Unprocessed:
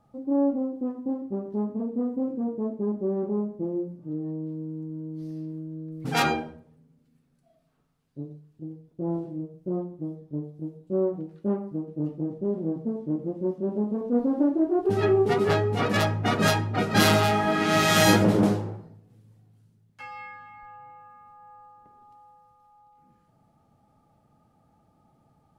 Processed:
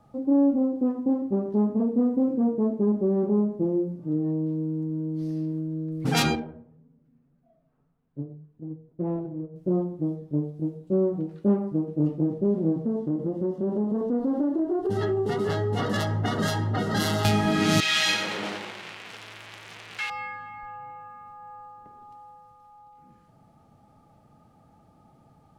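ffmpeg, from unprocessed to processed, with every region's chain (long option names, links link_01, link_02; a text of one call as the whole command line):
ffmpeg -i in.wav -filter_complex "[0:a]asettb=1/sr,asplit=3[link_01][link_02][link_03];[link_01]atrim=end=6.354[link_04];[link_02]atrim=start=6.35:end=9.56,asetpts=PTS-STARTPTS,afade=type=in:duration=0.004:curve=qsin,afade=type=out:start_time=3.206:duration=0.004:curve=qsin,flanger=delay=4:depth=4.5:regen=55:speed=1.8:shape=sinusoidal,adynamicsmooth=sensitivity=4.5:basefreq=1600[link_05];[link_03]atrim=start=9.556[link_06];[link_04][link_05]acrossfade=duration=0.004:curve1=hsin:curve2=qsin[link_07];[link_07][link_06]acrossfade=duration=0.004:curve1=qsin:curve2=hsin,asettb=1/sr,asplit=3[link_08][link_09][link_10];[link_08]atrim=end=12.854[link_11];[link_09]atrim=start=12.85:end=17.25,asetpts=PTS-STARTPTS,afade=type=in:duration=0.004:curve=qsin,afade=type=out:start_time=4.396:duration=0.004:curve=qsin,acompressor=threshold=-29dB:ratio=3:attack=3.2:release=140:knee=1:detection=peak,asuperstop=centerf=2400:order=12:qfactor=5.3[link_12];[link_10]atrim=start=17.246[link_13];[link_11][link_12]acrossfade=duration=0.004:curve1=hsin:curve2=qsin[link_14];[link_14][link_13]acrossfade=duration=0.004:curve1=qsin:curve2=hsin,asettb=1/sr,asplit=3[link_15][link_16][link_17];[link_15]atrim=end=17.804[link_18];[link_16]atrim=start=17.8:end=20.1,asetpts=PTS-STARTPTS,afade=type=in:duration=0.004:curve=qsin,afade=type=out:start_time=2.296:duration=0.004:curve=qsin,aeval=exprs='val(0)+0.5*0.0398*sgn(val(0))':channel_layout=same,bandpass=frequency=2600:width_type=q:width=1.4,aecho=1:1:91|182|273|364|455:0.398|0.167|0.0702|0.0295|0.0124,atrim=end_sample=101430[link_19];[link_17]atrim=start=20.096[link_20];[link_18][link_19]acrossfade=duration=0.004:curve1=hsin:curve2=qsin[link_21];[link_21][link_20]acrossfade=duration=0.004:curve1=qsin:curve2=hsin,acrossover=split=310|3000[link_22][link_23][link_24];[link_23]acompressor=threshold=-33dB:ratio=6[link_25];[link_22][link_25][link_24]amix=inputs=3:normalize=0,highshelf=frequency=12000:gain=-5,volume=6dB" out.wav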